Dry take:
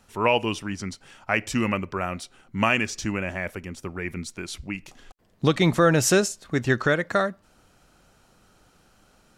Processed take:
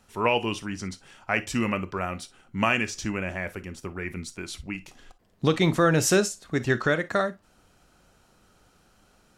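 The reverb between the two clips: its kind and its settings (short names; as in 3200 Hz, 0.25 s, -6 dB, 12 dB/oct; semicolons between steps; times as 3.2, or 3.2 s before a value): non-linear reverb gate 80 ms flat, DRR 12 dB; gain -2 dB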